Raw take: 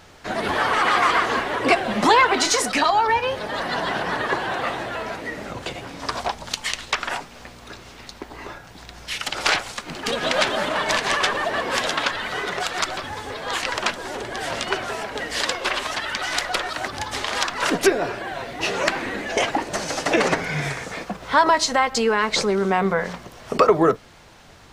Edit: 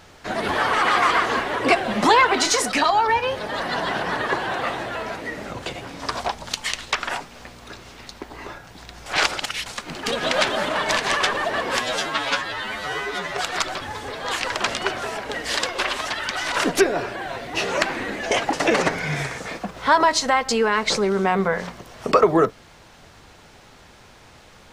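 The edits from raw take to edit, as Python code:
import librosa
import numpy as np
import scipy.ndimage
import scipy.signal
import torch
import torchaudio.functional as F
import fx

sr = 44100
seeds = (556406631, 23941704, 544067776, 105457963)

y = fx.edit(x, sr, fx.reverse_span(start_s=9.06, length_s=0.6),
    fx.stretch_span(start_s=11.8, length_s=0.78, factor=2.0),
    fx.cut(start_s=13.89, length_s=0.64),
    fx.cut(start_s=16.38, length_s=1.2),
    fx.cut(start_s=19.59, length_s=0.4), tone=tone)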